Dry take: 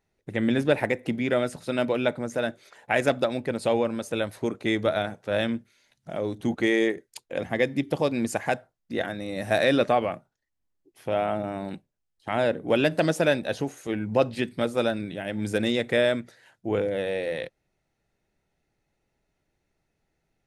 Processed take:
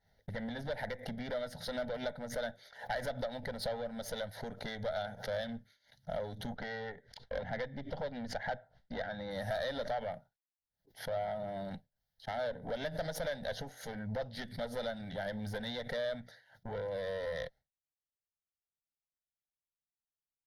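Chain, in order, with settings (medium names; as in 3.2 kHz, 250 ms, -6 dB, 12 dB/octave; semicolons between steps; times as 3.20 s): 6.56–9.31 s: low-pass 3.3 kHz 12 dB/octave; expander -46 dBFS; compression 6:1, threshold -30 dBFS, peak gain reduction 14 dB; valve stage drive 31 dB, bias 0.6; static phaser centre 1.7 kHz, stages 8; swell ahead of each attack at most 140 dB/s; trim +3.5 dB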